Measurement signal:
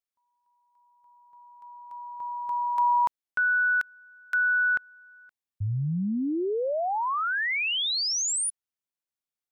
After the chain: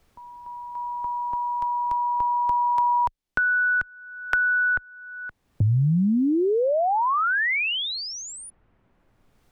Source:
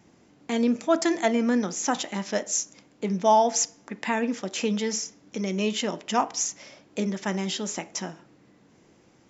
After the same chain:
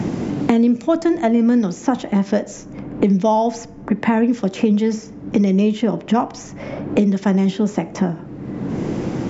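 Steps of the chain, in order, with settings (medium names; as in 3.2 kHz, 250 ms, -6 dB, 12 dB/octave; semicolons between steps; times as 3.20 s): tilt EQ -4 dB/octave; three bands compressed up and down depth 100%; trim +3 dB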